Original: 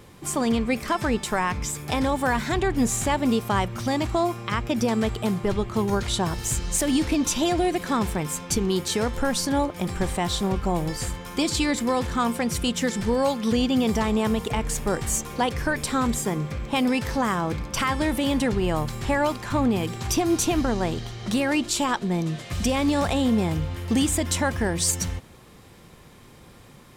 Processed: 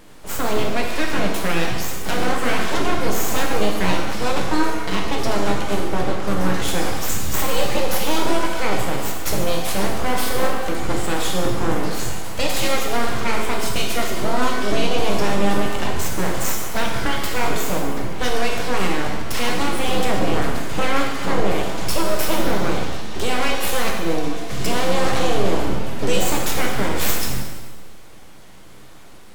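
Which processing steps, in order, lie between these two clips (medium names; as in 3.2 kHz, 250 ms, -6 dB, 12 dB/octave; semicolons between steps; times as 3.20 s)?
speed mistake 48 kHz file played as 44.1 kHz; full-wave rectifier; pitch-shifted reverb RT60 1.1 s, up +7 st, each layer -8 dB, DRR 0 dB; trim +2.5 dB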